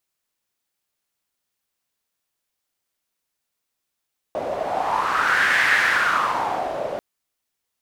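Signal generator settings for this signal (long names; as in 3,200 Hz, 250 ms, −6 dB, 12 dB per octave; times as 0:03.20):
wind from filtered noise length 2.64 s, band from 580 Hz, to 1,800 Hz, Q 4.8, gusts 1, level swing 9 dB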